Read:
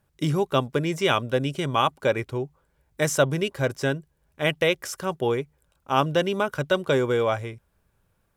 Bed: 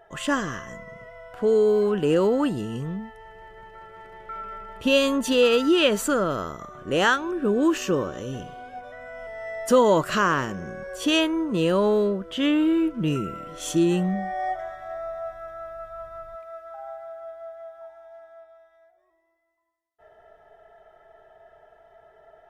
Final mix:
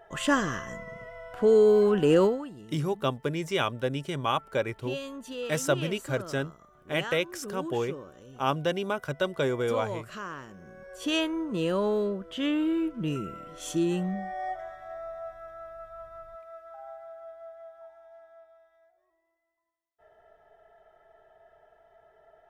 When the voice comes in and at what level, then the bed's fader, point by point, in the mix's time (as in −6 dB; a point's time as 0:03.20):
2.50 s, −5.5 dB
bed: 0:02.24 0 dB
0:02.45 −17 dB
0:10.45 −17 dB
0:11.15 −6 dB